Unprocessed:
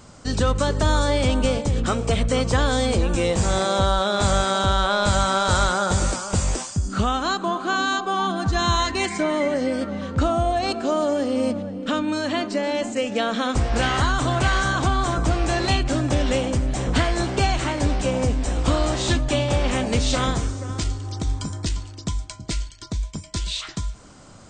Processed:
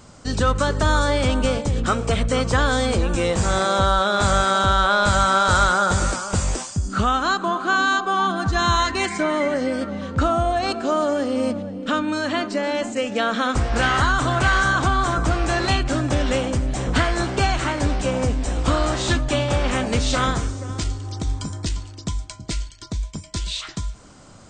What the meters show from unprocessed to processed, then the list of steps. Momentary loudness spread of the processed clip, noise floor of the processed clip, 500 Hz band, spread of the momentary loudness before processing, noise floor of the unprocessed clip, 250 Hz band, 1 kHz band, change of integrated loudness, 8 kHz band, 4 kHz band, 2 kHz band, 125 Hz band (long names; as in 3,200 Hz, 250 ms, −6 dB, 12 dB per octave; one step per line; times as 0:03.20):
11 LU, −42 dBFS, +0.5 dB, 8 LU, −42 dBFS, 0.0 dB, +3.0 dB, +1.5 dB, 0.0 dB, +0.5 dB, +4.5 dB, 0.0 dB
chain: dynamic equaliser 1,400 Hz, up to +6 dB, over −37 dBFS, Q 1.8